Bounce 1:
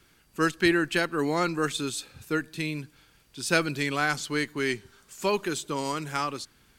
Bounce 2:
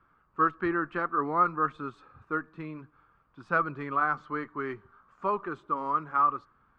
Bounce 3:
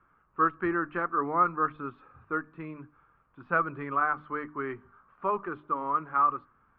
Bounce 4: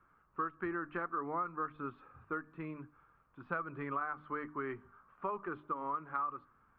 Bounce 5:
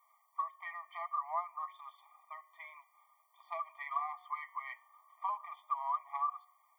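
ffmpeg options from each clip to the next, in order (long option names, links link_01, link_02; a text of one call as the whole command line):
ffmpeg -i in.wav -af "lowpass=frequency=1200:width_type=q:width=7.6,flanger=delay=1.2:depth=2.7:regen=-77:speed=0.59:shape=sinusoidal,volume=-3dB" out.wav
ffmpeg -i in.wav -af "lowpass=frequency=2900:width=0.5412,lowpass=frequency=2900:width=1.3066,bandreject=frequency=50:width_type=h:width=6,bandreject=frequency=100:width_type=h:width=6,bandreject=frequency=150:width_type=h:width=6,bandreject=frequency=200:width_type=h:width=6,bandreject=frequency=250:width_type=h:width=6,bandreject=frequency=300:width_type=h:width=6" out.wav
ffmpeg -i in.wav -af "acompressor=threshold=-31dB:ratio=6,volume=-3dB" out.wav
ffmpeg -i in.wav -af "bandreject=frequency=182.7:width_type=h:width=4,bandreject=frequency=365.4:width_type=h:width=4,bandreject=frequency=548.1:width_type=h:width=4,bandreject=frequency=730.8:width_type=h:width=4,bandreject=frequency=913.5:width_type=h:width=4,bandreject=frequency=1096.2:width_type=h:width=4,bandreject=frequency=1278.9:width_type=h:width=4,bandreject=frequency=1461.6:width_type=h:width=4,bandreject=frequency=1644.3:width_type=h:width=4,bandreject=frequency=1827:width_type=h:width=4,bandreject=frequency=2009.7:width_type=h:width=4,bandreject=frequency=2192.4:width_type=h:width=4,bandreject=frequency=2375.1:width_type=h:width=4,bandreject=frequency=2557.8:width_type=h:width=4,bandreject=frequency=2740.5:width_type=h:width=4,bandreject=frequency=2923.2:width_type=h:width=4,bandreject=frequency=3105.9:width_type=h:width=4,bandreject=frequency=3288.6:width_type=h:width=4,bandreject=frequency=3471.3:width_type=h:width=4,bandreject=frequency=3654:width_type=h:width=4,bandreject=frequency=3836.7:width_type=h:width=4,bandreject=frequency=4019.4:width_type=h:width=4,bandreject=frequency=4202.1:width_type=h:width=4,bandreject=frequency=4384.8:width_type=h:width=4,bandreject=frequency=4567.5:width_type=h:width=4,bandreject=frequency=4750.2:width_type=h:width=4,bandreject=frequency=4932.9:width_type=h:width=4,bandreject=frequency=5115.6:width_type=h:width=4,bandreject=frequency=5298.3:width_type=h:width=4,bandreject=frequency=5481:width_type=h:width=4,bandreject=frequency=5663.7:width_type=h:width=4,bandreject=frequency=5846.4:width_type=h:width=4,crystalizer=i=4:c=0,afftfilt=real='re*eq(mod(floor(b*sr/1024/610),2),1)':imag='im*eq(mod(floor(b*sr/1024/610),2),1)':win_size=1024:overlap=0.75,volume=2dB" out.wav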